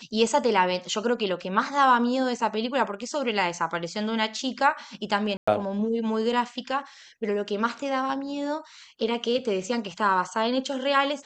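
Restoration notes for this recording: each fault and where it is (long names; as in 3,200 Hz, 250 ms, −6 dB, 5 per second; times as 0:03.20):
0:05.37–0:05.47: drop-out 105 ms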